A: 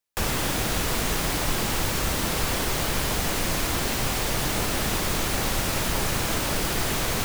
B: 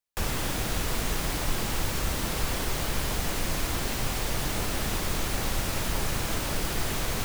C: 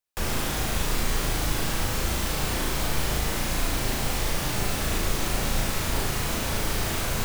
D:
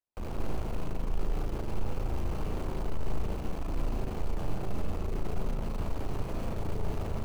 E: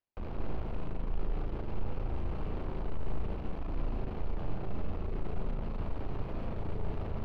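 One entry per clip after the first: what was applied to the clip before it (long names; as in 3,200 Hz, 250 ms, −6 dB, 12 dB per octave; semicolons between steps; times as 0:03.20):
low-shelf EQ 79 Hz +6 dB; level −5 dB
flutter between parallel walls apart 6.3 metres, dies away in 0.58 s
running median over 25 samples; soft clipping −28.5 dBFS, distortion −9 dB; on a send at −6 dB: convolution reverb RT60 0.40 s, pre-delay 147 ms; on the sum: level −2.5 dB
high-frequency loss of the air 370 metres; reversed playback; upward compression, threshold −31 dBFS; reversed playback; high-shelf EQ 3,400 Hz +8.5 dB; level −2.5 dB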